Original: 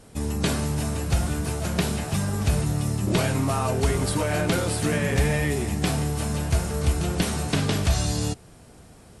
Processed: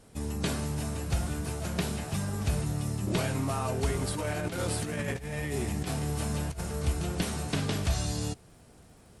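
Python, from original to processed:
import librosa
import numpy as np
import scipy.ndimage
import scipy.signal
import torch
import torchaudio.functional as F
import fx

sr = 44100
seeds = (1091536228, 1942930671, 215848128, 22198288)

y = fx.over_compress(x, sr, threshold_db=-25.0, ratio=-0.5, at=(4.14, 6.61))
y = fx.dmg_crackle(y, sr, seeds[0], per_s=110.0, level_db=-48.0)
y = F.gain(torch.from_numpy(y), -6.5).numpy()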